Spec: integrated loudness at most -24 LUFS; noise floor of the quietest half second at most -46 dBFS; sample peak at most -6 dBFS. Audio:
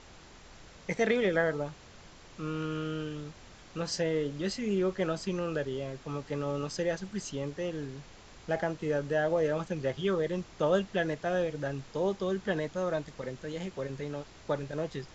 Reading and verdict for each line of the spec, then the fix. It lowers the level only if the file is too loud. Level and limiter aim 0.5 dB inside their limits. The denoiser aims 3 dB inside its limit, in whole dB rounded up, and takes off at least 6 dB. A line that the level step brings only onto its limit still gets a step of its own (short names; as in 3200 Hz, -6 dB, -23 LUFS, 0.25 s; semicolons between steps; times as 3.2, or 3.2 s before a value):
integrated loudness -32.5 LUFS: OK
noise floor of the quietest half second -52 dBFS: OK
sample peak -14.5 dBFS: OK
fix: none